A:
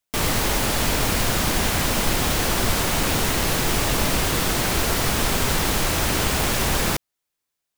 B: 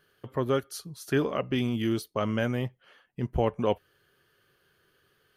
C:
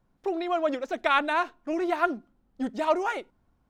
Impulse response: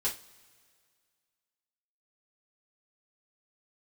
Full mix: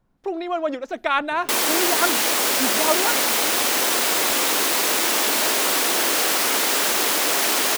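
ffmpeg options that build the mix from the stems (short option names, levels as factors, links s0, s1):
-filter_complex "[0:a]aeval=exprs='0.398*sin(PI/2*5.01*val(0)/0.398)':c=same,highpass=f=280:w=0.5412,highpass=f=280:w=1.3066,adelay=1350,volume=0.376[s0];[1:a]bass=f=250:g=-3,treble=f=4000:g=12,acompressor=threshold=0.0224:ratio=6,adelay=950,volume=0.224[s1];[2:a]volume=1.26[s2];[s0][s1][s2]amix=inputs=3:normalize=0"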